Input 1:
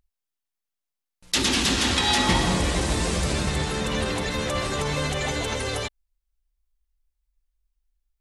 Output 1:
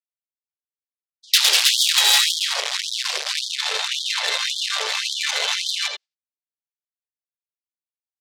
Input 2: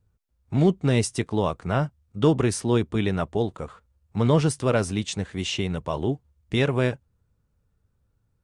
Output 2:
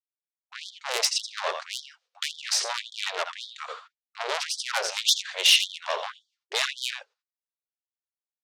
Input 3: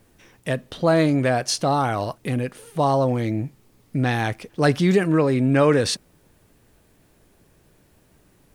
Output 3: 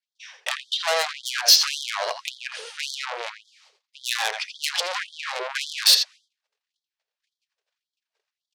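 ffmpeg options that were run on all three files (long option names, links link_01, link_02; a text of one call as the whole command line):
ffmpeg -i in.wav -filter_complex "[0:a]asplit=2[link_01][link_02];[link_02]alimiter=limit=-17dB:level=0:latency=1,volume=0dB[link_03];[link_01][link_03]amix=inputs=2:normalize=0,agate=range=-38dB:threshold=-46dB:ratio=16:detection=peak,lowpass=frequency=4900:width=0.5412,lowpass=frequency=4900:width=1.3066,lowshelf=frequency=250:gain=12,acontrast=38,adynamicequalizer=threshold=0.0501:dfrequency=340:dqfactor=3:tfrequency=340:tqfactor=3:attack=5:release=100:ratio=0.375:range=3:mode=cutabove:tftype=bell,asplit=2[link_04][link_05];[link_05]aecho=0:1:83:0.316[link_06];[link_04][link_06]amix=inputs=2:normalize=0,asoftclip=type=tanh:threshold=-11.5dB,crystalizer=i=9.5:c=0,afftfilt=real='re*gte(b*sr/1024,380*pow(3200/380,0.5+0.5*sin(2*PI*1.8*pts/sr)))':imag='im*gte(b*sr/1024,380*pow(3200/380,0.5+0.5*sin(2*PI*1.8*pts/sr)))':win_size=1024:overlap=0.75,volume=-10dB" out.wav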